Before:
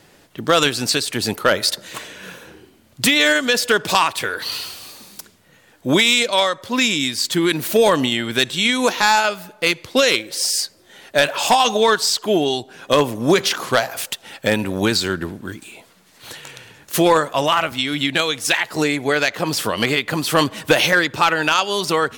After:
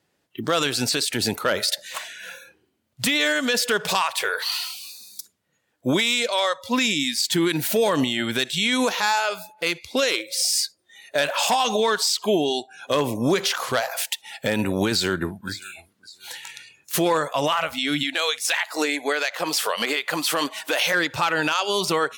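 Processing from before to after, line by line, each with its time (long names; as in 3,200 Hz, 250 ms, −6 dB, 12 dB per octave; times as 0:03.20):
0:14.91–0:15.50: delay throw 560 ms, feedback 35%, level −15 dB
0:18.03–0:20.94: high-pass filter 460 Hz 6 dB per octave
whole clip: high-pass filter 57 Hz; noise reduction from a noise print of the clip's start 20 dB; brickwall limiter −12 dBFS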